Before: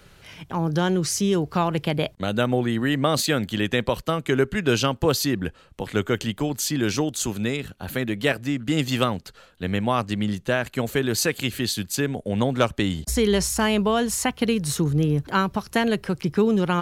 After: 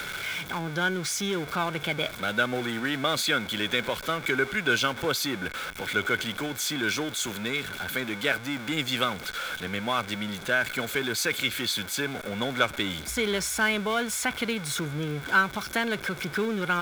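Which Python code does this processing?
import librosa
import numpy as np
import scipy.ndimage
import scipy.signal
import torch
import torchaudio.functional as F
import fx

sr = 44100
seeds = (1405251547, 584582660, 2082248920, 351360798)

y = x + 0.5 * 10.0 ** (-25.0 / 20.0) * np.sign(x)
y = fx.low_shelf(y, sr, hz=150.0, db=-11.0)
y = fx.small_body(y, sr, hz=(1500.0, 2200.0, 3400.0), ring_ms=20, db=15)
y = y * 10.0 ** (-8.0 / 20.0)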